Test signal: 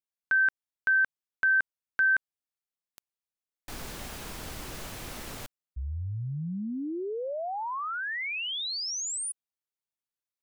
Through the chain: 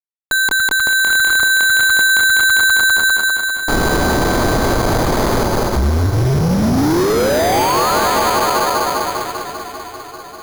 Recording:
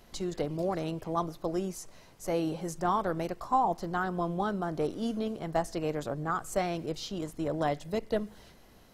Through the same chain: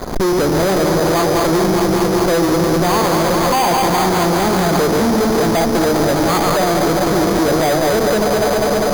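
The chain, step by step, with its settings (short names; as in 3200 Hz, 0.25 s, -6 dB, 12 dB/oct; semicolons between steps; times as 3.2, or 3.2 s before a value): regenerating reverse delay 0.1 s, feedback 82%, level -7 dB; steep low-pass 1200 Hz 36 dB/oct; bell 400 Hz +4 dB 2.7 oct; notches 50/100/150/200/250 Hz; compressor, threshold -36 dBFS; fuzz box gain 50 dB, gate -57 dBFS; swung echo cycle 0.789 s, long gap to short 3:1, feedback 46%, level -12.5 dB; careless resampling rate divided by 8×, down filtered, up hold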